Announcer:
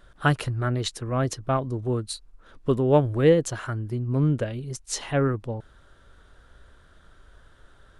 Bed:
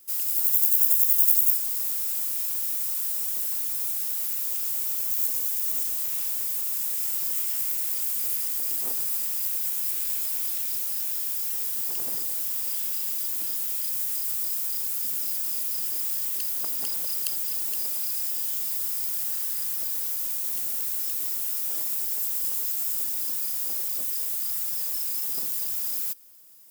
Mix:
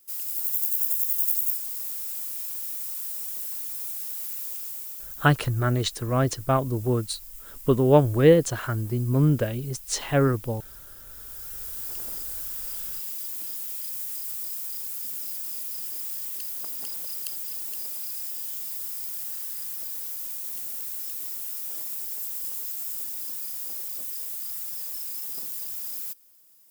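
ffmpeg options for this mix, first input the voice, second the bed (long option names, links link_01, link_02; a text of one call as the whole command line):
ffmpeg -i stem1.wav -i stem2.wav -filter_complex "[0:a]adelay=5000,volume=2dB[link_01];[1:a]volume=7dB,afade=type=out:start_time=4.43:duration=0.86:silence=0.251189,afade=type=in:start_time=11.06:duration=0.85:silence=0.251189[link_02];[link_01][link_02]amix=inputs=2:normalize=0" out.wav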